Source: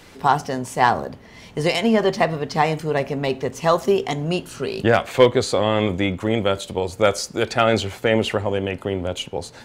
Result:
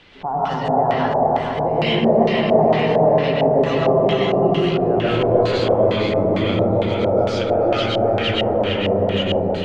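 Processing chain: peak limiter -13 dBFS, peak gain reduction 10.5 dB; delay with an opening low-pass 152 ms, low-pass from 400 Hz, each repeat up 2 oct, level 0 dB; algorithmic reverb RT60 1.2 s, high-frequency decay 0.35×, pre-delay 80 ms, DRR -5.5 dB; LFO low-pass square 2.2 Hz 750–3200 Hz; trim -5.5 dB

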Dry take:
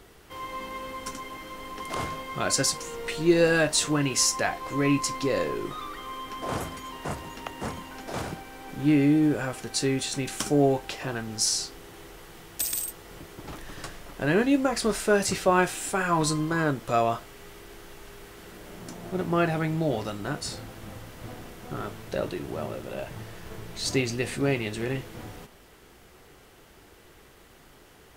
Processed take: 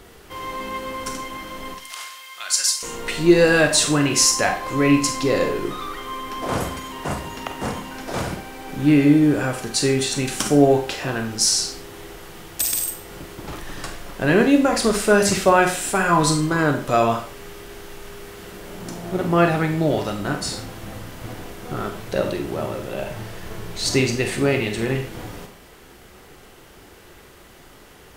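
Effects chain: 1.74–2.83 s: Bessel high-pass 2.8 kHz, order 2; Schroeder reverb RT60 0.41 s, combs from 31 ms, DRR 5.5 dB; trim +6 dB

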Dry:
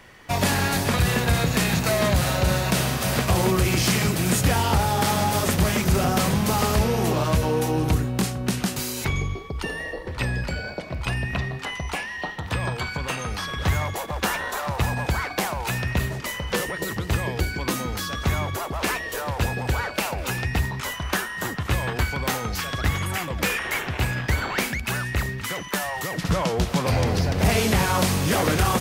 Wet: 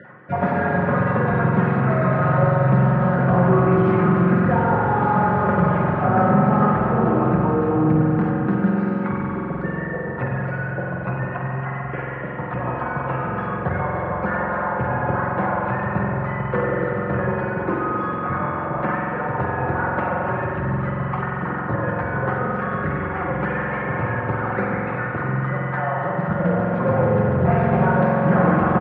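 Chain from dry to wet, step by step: random holes in the spectrogram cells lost 22%; band-stop 360 Hz, Q 12; spring tank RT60 3.8 s, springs 45 ms, chirp 65 ms, DRR -3 dB; in parallel at -10 dB: wavefolder -16 dBFS; on the sum: elliptic band-pass 100–1500 Hz, stop band 80 dB; reverse; upward compressor, threshold -23 dBFS; reverse; comb 5.6 ms, depth 51%

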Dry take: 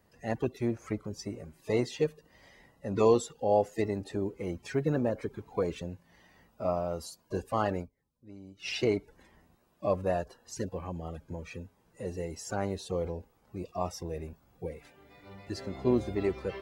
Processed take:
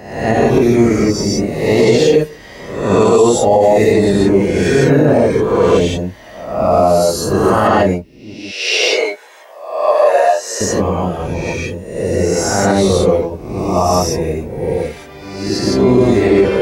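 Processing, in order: reverse spectral sustain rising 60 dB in 0.80 s; 8.34–10.61 s: high-pass 560 Hz 24 dB/octave; gated-style reverb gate 190 ms rising, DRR -4 dB; loudness maximiser +15.5 dB; trim -1 dB

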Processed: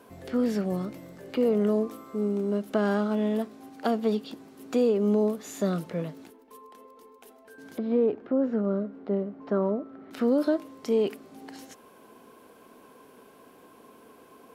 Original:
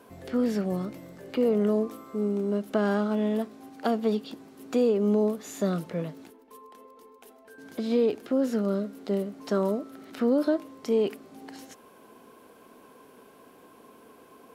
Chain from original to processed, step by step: 7.78–10.11 s: low-pass 1.5 kHz 12 dB/octave

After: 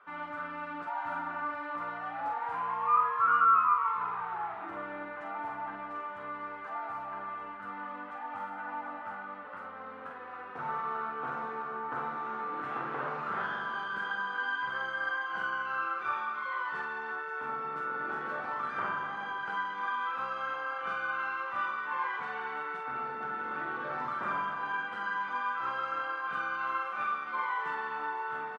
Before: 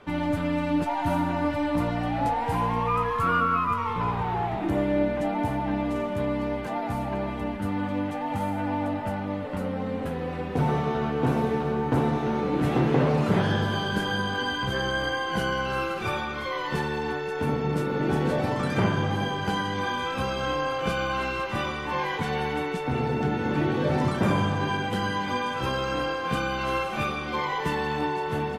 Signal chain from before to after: band-pass filter 1.3 kHz, Q 4.2; doubling 45 ms -4.5 dB; trim +2 dB

